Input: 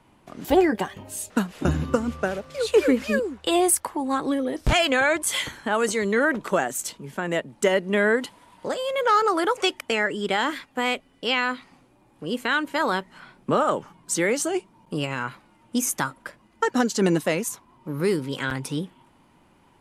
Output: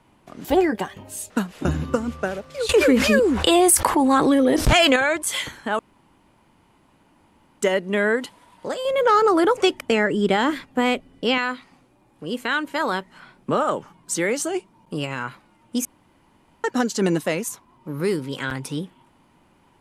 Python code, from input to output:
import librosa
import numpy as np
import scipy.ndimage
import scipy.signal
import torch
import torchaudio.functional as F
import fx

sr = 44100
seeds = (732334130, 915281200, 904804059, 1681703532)

y = fx.env_flatten(x, sr, amount_pct=70, at=(2.69, 4.96))
y = fx.low_shelf(y, sr, hz=500.0, db=11.0, at=(8.85, 11.38))
y = fx.edit(y, sr, fx.room_tone_fill(start_s=5.79, length_s=1.8),
    fx.room_tone_fill(start_s=15.85, length_s=0.79), tone=tone)